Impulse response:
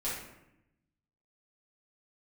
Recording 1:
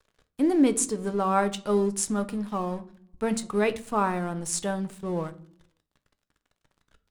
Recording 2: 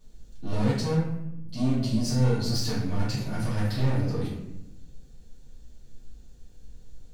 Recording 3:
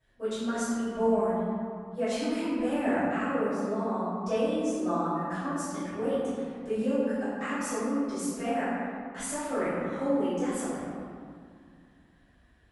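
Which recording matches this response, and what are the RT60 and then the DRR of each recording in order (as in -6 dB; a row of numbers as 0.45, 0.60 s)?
2; not exponential, 0.85 s, 2.2 s; 10.0, -10.0, -16.0 dB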